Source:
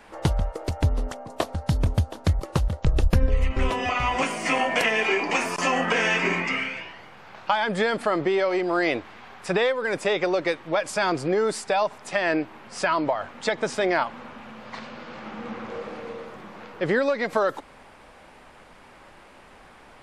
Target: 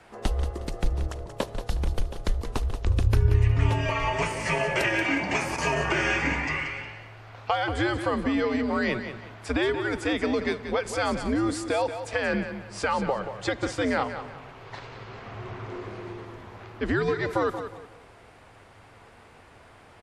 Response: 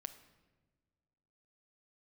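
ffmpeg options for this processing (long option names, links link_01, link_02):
-filter_complex "[0:a]aecho=1:1:181|362|543:0.316|0.0885|0.0248,asplit=2[link_01][link_02];[1:a]atrim=start_sample=2205,asetrate=26460,aresample=44100[link_03];[link_02][link_03]afir=irnorm=-1:irlink=0,volume=-6dB[link_04];[link_01][link_04]amix=inputs=2:normalize=0,afreqshift=-110,volume=-6dB"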